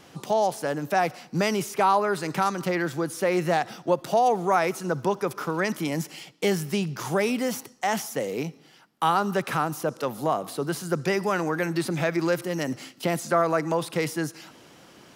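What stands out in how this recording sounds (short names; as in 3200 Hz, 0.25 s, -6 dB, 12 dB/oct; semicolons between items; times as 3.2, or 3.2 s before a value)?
noise floor -54 dBFS; spectral tilt -5.0 dB/oct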